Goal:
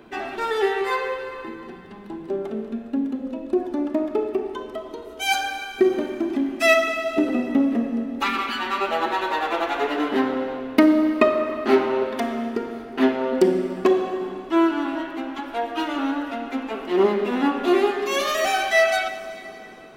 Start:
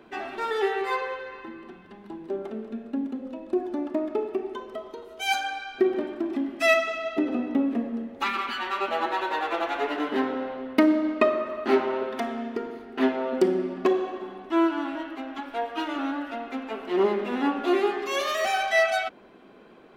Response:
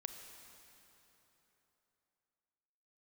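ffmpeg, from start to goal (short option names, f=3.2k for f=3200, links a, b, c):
-filter_complex "[0:a]asplit=2[a][b];[1:a]atrim=start_sample=2205,lowshelf=f=220:g=10,highshelf=f=4.9k:g=9[c];[b][c]afir=irnorm=-1:irlink=0,volume=2.5dB[d];[a][d]amix=inputs=2:normalize=0,volume=-2.5dB"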